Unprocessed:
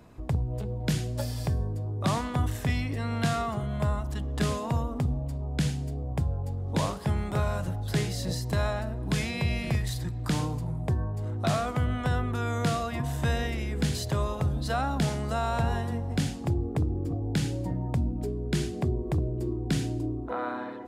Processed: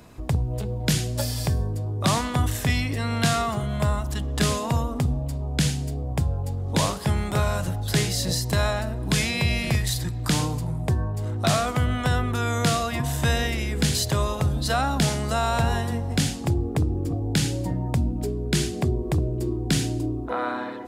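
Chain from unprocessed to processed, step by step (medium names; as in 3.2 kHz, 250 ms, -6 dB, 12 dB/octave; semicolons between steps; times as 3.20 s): treble shelf 2.4 kHz +8 dB; trim +4 dB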